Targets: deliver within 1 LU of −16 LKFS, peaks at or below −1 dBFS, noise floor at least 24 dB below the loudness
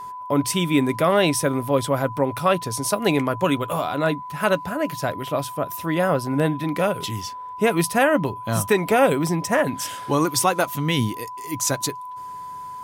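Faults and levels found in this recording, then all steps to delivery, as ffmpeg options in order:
interfering tone 1,000 Hz; level of the tone −32 dBFS; integrated loudness −22.0 LKFS; sample peak −5.5 dBFS; target loudness −16.0 LKFS
→ -af "bandreject=frequency=1000:width=30"
-af "volume=6dB,alimiter=limit=-1dB:level=0:latency=1"

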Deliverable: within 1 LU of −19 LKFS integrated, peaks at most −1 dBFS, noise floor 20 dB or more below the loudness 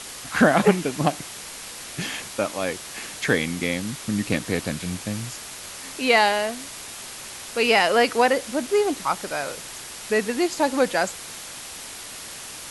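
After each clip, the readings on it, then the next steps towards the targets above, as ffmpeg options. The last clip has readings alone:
background noise floor −38 dBFS; target noise floor −43 dBFS; integrated loudness −23.0 LKFS; sample peak −2.5 dBFS; target loudness −19.0 LKFS
→ -af "afftdn=noise_reduction=6:noise_floor=-38"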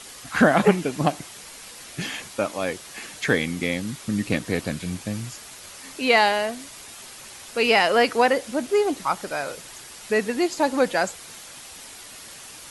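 background noise floor −42 dBFS; target noise floor −43 dBFS
→ -af "afftdn=noise_reduction=6:noise_floor=-42"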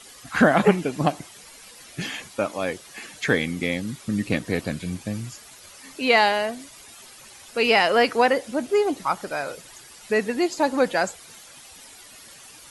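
background noise floor −47 dBFS; integrated loudness −23.0 LKFS; sample peak −2.5 dBFS; target loudness −19.0 LKFS
→ -af "volume=4dB,alimiter=limit=-1dB:level=0:latency=1"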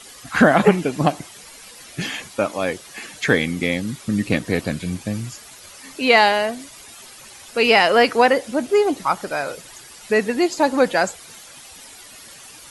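integrated loudness −19.5 LKFS; sample peak −1.0 dBFS; background noise floor −43 dBFS

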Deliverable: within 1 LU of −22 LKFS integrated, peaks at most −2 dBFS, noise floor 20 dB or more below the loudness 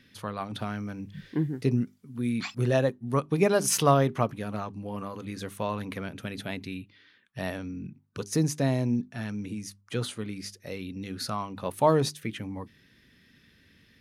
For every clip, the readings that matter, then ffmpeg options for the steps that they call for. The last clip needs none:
integrated loudness −29.5 LKFS; sample peak −8.5 dBFS; target loudness −22.0 LKFS
→ -af "volume=7.5dB,alimiter=limit=-2dB:level=0:latency=1"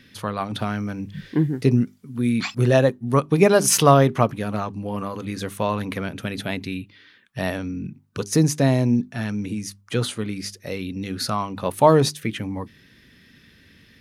integrated loudness −22.0 LKFS; sample peak −2.0 dBFS; background noise floor −54 dBFS

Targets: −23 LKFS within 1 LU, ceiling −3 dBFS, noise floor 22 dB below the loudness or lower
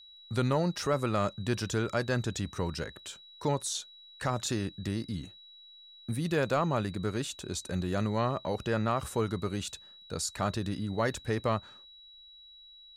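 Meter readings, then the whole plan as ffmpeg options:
interfering tone 3,900 Hz; level of the tone −51 dBFS; integrated loudness −32.5 LKFS; sample peak −18.5 dBFS; target loudness −23.0 LKFS
→ -af "bandreject=frequency=3900:width=30"
-af "volume=9.5dB"

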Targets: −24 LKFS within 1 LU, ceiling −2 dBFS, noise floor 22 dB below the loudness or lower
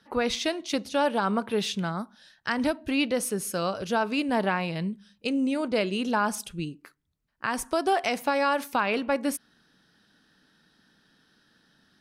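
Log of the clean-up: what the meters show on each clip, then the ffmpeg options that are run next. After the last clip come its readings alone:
integrated loudness −27.5 LKFS; sample peak −14.0 dBFS; target loudness −24.0 LKFS
→ -af "volume=3.5dB"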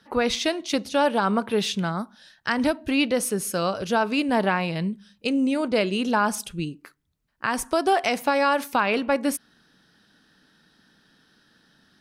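integrated loudness −24.0 LKFS; sample peak −10.5 dBFS; background noise floor −64 dBFS

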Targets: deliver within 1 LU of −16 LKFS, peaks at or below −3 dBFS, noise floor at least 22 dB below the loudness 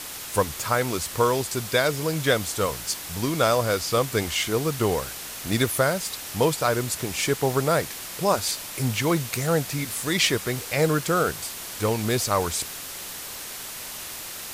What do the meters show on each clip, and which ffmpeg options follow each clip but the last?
background noise floor −37 dBFS; target noise floor −47 dBFS; integrated loudness −25.0 LKFS; sample peak −7.0 dBFS; target loudness −16.0 LKFS
→ -af "afftdn=noise_reduction=10:noise_floor=-37"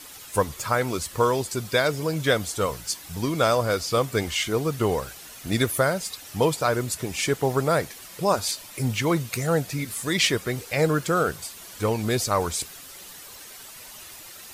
background noise floor −43 dBFS; target noise floor −47 dBFS
→ -af "afftdn=noise_reduction=6:noise_floor=-43"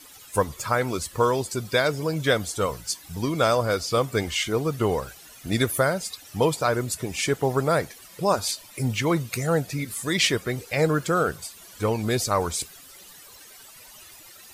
background noise floor −48 dBFS; integrated loudness −25.0 LKFS; sample peak −7.0 dBFS; target loudness −16.0 LKFS
→ -af "volume=9dB,alimiter=limit=-3dB:level=0:latency=1"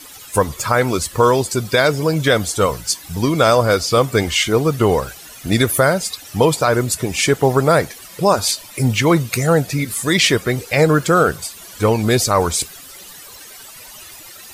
integrated loudness −16.5 LKFS; sample peak −3.0 dBFS; background noise floor −39 dBFS

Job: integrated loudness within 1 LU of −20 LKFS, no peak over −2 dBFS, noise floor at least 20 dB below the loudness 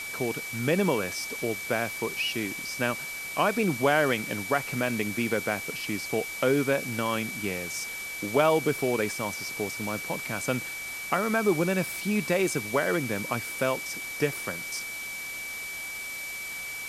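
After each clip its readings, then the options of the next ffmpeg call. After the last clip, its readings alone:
interfering tone 2,300 Hz; level of the tone −35 dBFS; background noise floor −37 dBFS; target noise floor −49 dBFS; integrated loudness −28.5 LKFS; sample peak −8.0 dBFS; target loudness −20.0 LKFS
→ -af "bandreject=frequency=2300:width=30"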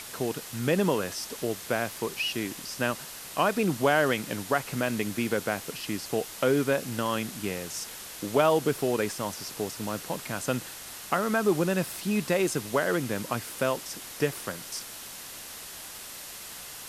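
interfering tone none found; background noise floor −42 dBFS; target noise floor −50 dBFS
→ -af "afftdn=noise_reduction=8:noise_floor=-42"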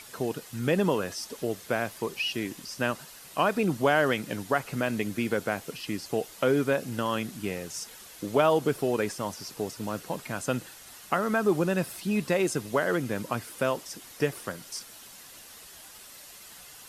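background noise floor −48 dBFS; target noise floor −49 dBFS
→ -af "afftdn=noise_reduction=6:noise_floor=-48"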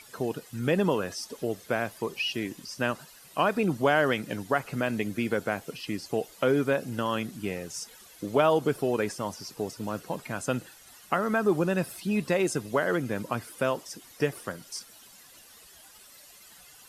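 background noise floor −53 dBFS; integrated loudness −29.0 LKFS; sample peak −8.5 dBFS; target loudness −20.0 LKFS
→ -af "volume=9dB,alimiter=limit=-2dB:level=0:latency=1"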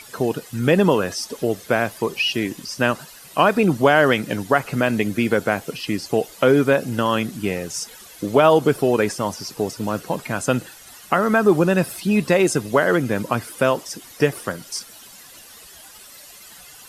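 integrated loudness −20.5 LKFS; sample peak −2.0 dBFS; background noise floor −44 dBFS

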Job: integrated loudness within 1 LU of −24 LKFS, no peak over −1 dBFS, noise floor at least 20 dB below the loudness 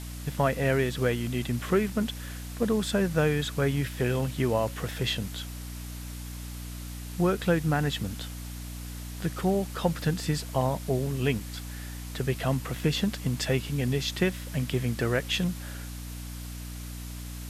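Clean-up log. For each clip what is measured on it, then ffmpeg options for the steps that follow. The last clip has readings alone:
mains hum 60 Hz; hum harmonics up to 300 Hz; level of the hum −36 dBFS; background noise floor −39 dBFS; target noise floor −50 dBFS; integrated loudness −29.5 LKFS; sample peak −11.0 dBFS; target loudness −24.0 LKFS
→ -af "bandreject=frequency=60:width_type=h:width=4,bandreject=frequency=120:width_type=h:width=4,bandreject=frequency=180:width_type=h:width=4,bandreject=frequency=240:width_type=h:width=4,bandreject=frequency=300:width_type=h:width=4"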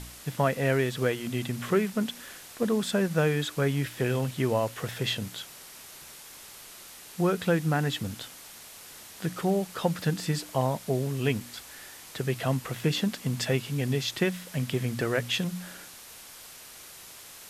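mains hum none found; background noise floor −47 dBFS; target noise floor −49 dBFS
→ -af "afftdn=noise_reduction=6:noise_floor=-47"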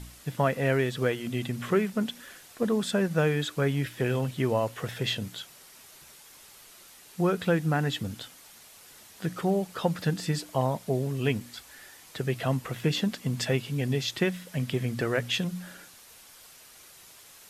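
background noise floor −52 dBFS; integrated loudness −29.0 LKFS; sample peak −11.0 dBFS; target loudness −24.0 LKFS
→ -af "volume=5dB"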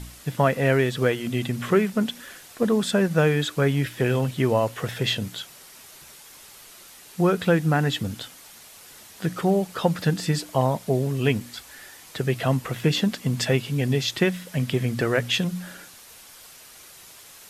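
integrated loudness −24.0 LKFS; sample peak −6.0 dBFS; background noise floor −47 dBFS

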